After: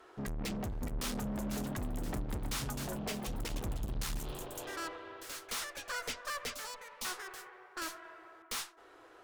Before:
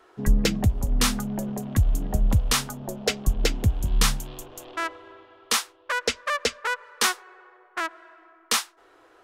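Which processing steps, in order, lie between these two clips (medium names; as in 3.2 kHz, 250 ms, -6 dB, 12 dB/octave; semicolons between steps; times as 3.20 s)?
valve stage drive 36 dB, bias 0.45; 6.54–7.05 s: static phaser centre 420 Hz, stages 6; ever faster or slower copies 659 ms, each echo +3 st, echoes 2, each echo -6 dB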